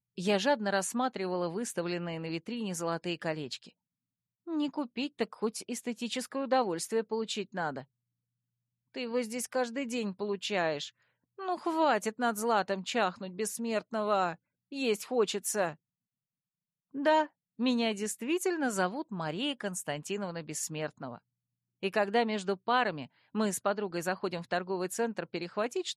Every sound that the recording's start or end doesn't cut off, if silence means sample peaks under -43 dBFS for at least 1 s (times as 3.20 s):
8.95–15.74 s